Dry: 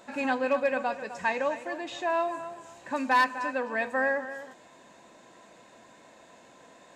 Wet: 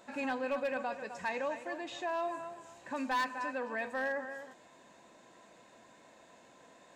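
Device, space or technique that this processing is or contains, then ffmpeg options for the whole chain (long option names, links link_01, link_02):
clipper into limiter: -af "asoftclip=type=hard:threshold=-19.5dB,alimiter=limit=-22.5dB:level=0:latency=1:release=24,volume=-5dB"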